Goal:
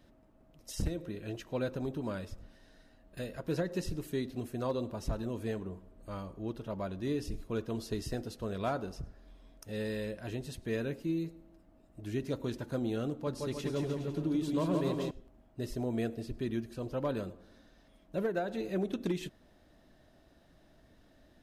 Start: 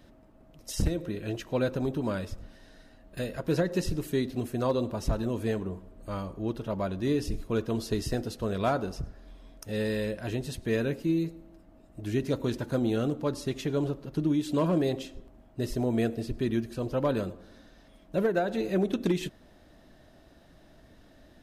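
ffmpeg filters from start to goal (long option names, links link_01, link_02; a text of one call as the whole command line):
ffmpeg -i in.wav -filter_complex "[0:a]asettb=1/sr,asplit=3[link_01][link_02][link_03];[link_01]atrim=end=13.104[link_04];[link_02]atrim=start=13.1:end=15.11,asetpts=PTS-STARTPTS,afade=type=in:duration=0.004:curve=qsin,afade=type=out:start_time=2.006:duration=0.004:curve=qsin,aecho=1:1:170|306|414.8|501.8|571.5:0.631|0.398|0.251|0.158|0.1,atrim=end_sample=88641[link_05];[link_03]atrim=start=15.106[link_06];[link_04][link_05]acrossfade=duration=0.004:curve1=hsin:curve2=qsin[link_07];[link_07][link_06]acrossfade=duration=0.004:curve1=qsin:curve2=hsin,volume=-6.5dB" out.wav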